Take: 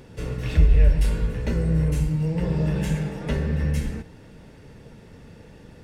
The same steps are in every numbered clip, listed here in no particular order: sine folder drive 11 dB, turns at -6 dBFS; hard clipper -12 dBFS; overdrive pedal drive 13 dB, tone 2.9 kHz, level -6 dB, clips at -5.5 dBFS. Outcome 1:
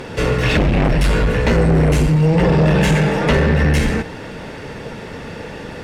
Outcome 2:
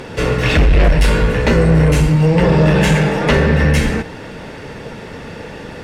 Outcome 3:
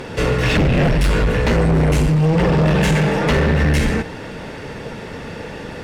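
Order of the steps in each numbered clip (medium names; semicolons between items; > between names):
hard clipper > sine folder > overdrive pedal; overdrive pedal > hard clipper > sine folder; sine folder > overdrive pedal > hard clipper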